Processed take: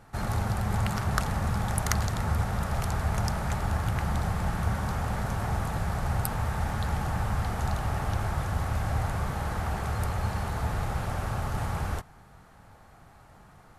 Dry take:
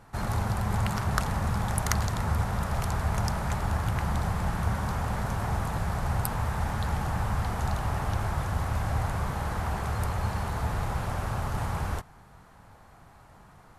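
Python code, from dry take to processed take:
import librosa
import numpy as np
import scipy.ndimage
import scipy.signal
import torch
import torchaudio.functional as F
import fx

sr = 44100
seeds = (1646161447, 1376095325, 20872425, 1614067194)

y = fx.notch(x, sr, hz=1000.0, q=13.0)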